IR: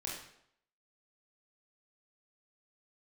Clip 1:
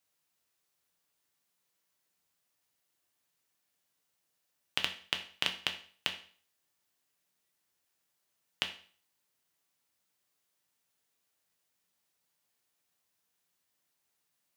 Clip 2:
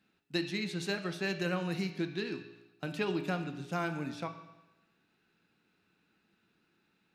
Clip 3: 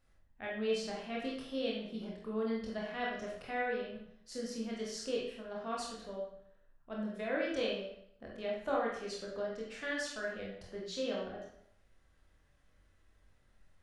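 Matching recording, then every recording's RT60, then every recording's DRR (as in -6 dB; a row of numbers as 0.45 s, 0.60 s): 3; 0.45 s, 1.0 s, 0.70 s; 4.0 dB, 6.0 dB, -4.0 dB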